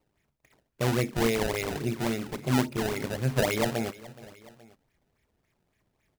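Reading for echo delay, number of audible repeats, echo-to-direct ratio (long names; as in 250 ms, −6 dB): 422 ms, 2, −18.0 dB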